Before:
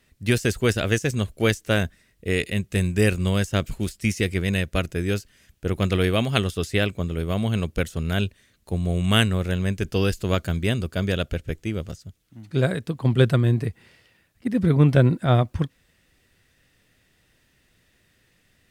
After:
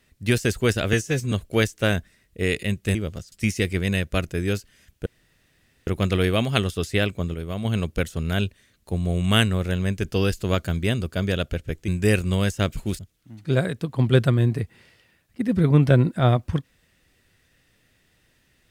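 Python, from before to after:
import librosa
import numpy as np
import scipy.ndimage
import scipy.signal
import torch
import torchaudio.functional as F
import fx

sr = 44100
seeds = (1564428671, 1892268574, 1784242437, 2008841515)

y = fx.edit(x, sr, fx.stretch_span(start_s=0.93, length_s=0.26, factor=1.5),
    fx.swap(start_s=2.82, length_s=1.11, other_s=11.68, other_length_s=0.37),
    fx.insert_room_tone(at_s=5.67, length_s=0.81),
    fx.clip_gain(start_s=7.14, length_s=0.31, db=-5.0), tone=tone)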